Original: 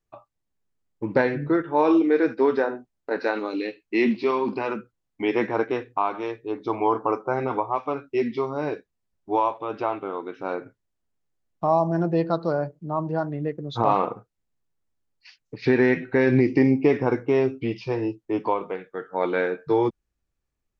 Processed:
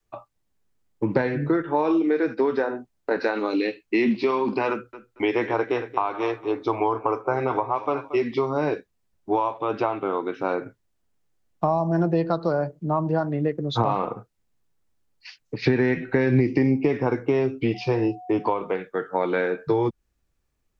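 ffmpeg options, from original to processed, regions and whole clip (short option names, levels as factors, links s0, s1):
-filter_complex "[0:a]asettb=1/sr,asplit=3[s0][s1][s2];[s0]atrim=end=4.704[s3];[s1]atrim=start=4.7:end=8.34,asetpts=PTS-STARTPTS,afade=t=in:d=0.004:c=qsin,afade=t=out:st=3.636:d=0.004:c=qsin,equalizer=f=190:w=2.4:g=-12,aecho=1:1:229|458:0.141|0.0353,atrim=end_sample=160524[s4];[s2]atrim=start=8.336[s5];[s3][s4]acrossfade=d=0.004:c1=hsin:c2=qsin[s6];[s6][s5]acrossfade=d=0.004:c1=qsin:c2=hsin,asettb=1/sr,asplit=3[s7][s8][s9];[s7]atrim=end=17.744[s10];[s8]atrim=start=17.74:end=18.49,asetpts=PTS-STARTPTS,afade=t=in:d=0.004:c=qsin,afade=t=out:st=0.746:d=0.004:c=qsin,aeval=exprs='val(0)+0.00562*sin(2*PI*730*n/s)':c=same,highpass=42[s11];[s9]atrim=start=18.486[s12];[s10][s11]acrossfade=d=0.004:c1=hsin:c2=qsin[s13];[s13][s12]acrossfade=d=0.004:c1=qsin:c2=hsin,adynamicequalizer=threshold=0.02:dfrequency=120:dqfactor=0.71:tfrequency=120:tqfactor=0.71:attack=5:release=100:ratio=0.375:range=2.5:mode=cutabove:tftype=bell,acrossover=split=160[s14][s15];[s15]acompressor=threshold=0.0501:ratio=6[s16];[s14][s16]amix=inputs=2:normalize=0,volume=2.11"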